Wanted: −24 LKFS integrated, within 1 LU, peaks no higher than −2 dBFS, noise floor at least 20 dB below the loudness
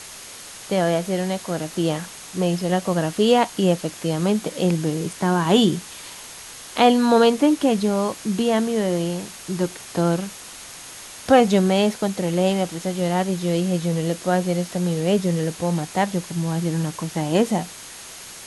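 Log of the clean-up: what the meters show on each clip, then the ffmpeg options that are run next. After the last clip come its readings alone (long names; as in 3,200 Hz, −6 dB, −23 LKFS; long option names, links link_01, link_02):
interfering tone 6,500 Hz; level of the tone −48 dBFS; background noise floor −39 dBFS; target noise floor −42 dBFS; integrated loudness −21.5 LKFS; sample peak −3.5 dBFS; target loudness −24.0 LKFS
→ -af "bandreject=frequency=6500:width=30"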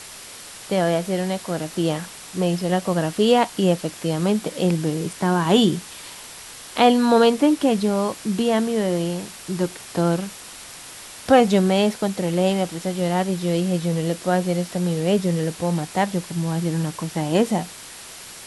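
interfering tone none found; background noise floor −40 dBFS; target noise floor −42 dBFS
→ -af "afftdn=noise_reduction=6:noise_floor=-40"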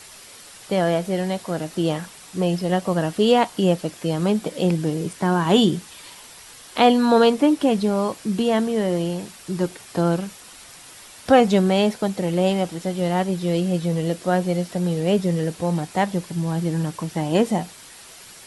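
background noise floor −44 dBFS; integrated loudness −21.5 LKFS; sample peak −4.0 dBFS; target loudness −24.0 LKFS
→ -af "volume=-2.5dB"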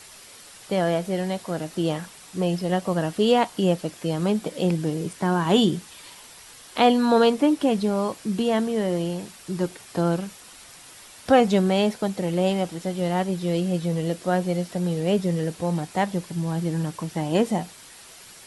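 integrated loudness −24.0 LKFS; sample peak −6.5 dBFS; background noise floor −46 dBFS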